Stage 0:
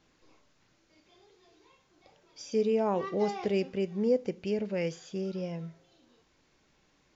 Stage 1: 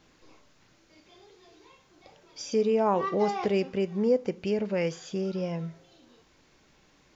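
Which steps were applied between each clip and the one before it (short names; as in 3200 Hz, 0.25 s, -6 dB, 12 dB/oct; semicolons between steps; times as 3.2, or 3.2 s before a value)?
in parallel at +0.5 dB: compressor, threshold -38 dBFS, peak gain reduction 16 dB; on the sum: dynamic EQ 1100 Hz, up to +6 dB, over -45 dBFS, Q 1.3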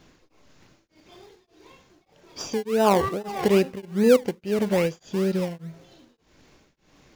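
in parallel at -6 dB: decimation with a swept rate 28×, swing 60% 2.4 Hz; on the sum: beating tremolo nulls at 1.7 Hz; gain +4.5 dB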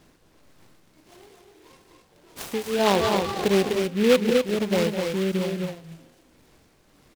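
loudspeakers at several distances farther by 71 m -9 dB, 86 m -5 dB; noise-modulated delay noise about 2400 Hz, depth 0.078 ms; gain -1.5 dB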